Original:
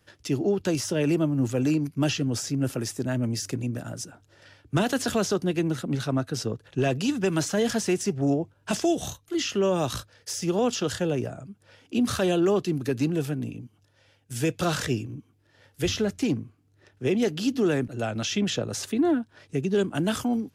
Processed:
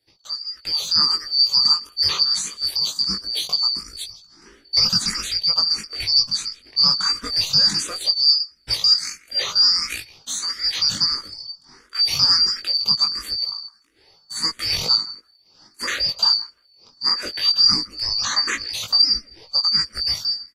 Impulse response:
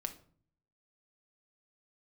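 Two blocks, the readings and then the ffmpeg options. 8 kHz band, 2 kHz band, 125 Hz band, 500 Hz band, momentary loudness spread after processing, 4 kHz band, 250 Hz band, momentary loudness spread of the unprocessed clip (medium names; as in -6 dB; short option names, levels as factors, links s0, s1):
+5.0 dB, +3.0 dB, -12.0 dB, -17.5 dB, 12 LU, +20.5 dB, -16.5 dB, 7 LU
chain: -filter_complex "[0:a]afftfilt=real='real(if(lt(b,272),68*(eq(floor(b/68),0)*1+eq(floor(b/68),1)*2+eq(floor(b/68),2)*3+eq(floor(b/68),3)*0)+mod(b,68),b),0)':imag='imag(if(lt(b,272),68*(eq(floor(b/68),0)*1+eq(floor(b/68),1)*2+eq(floor(b/68),2)*3+eq(floor(b/68),3)*0)+mod(b,68),b),0)':win_size=2048:overlap=0.75,dynaudnorm=f=170:g=9:m=5.01,flanger=delay=18:depth=2.9:speed=0.21,asplit=2[s0][s1];[s1]adelay=162,lowpass=f=2500:p=1,volume=0.15,asplit=2[s2][s3];[s3]adelay=162,lowpass=f=2500:p=1,volume=0.24[s4];[s2][s4]amix=inputs=2:normalize=0[s5];[s0][s5]amix=inputs=2:normalize=0,asplit=2[s6][s7];[s7]afreqshift=1.5[s8];[s6][s8]amix=inputs=2:normalize=1"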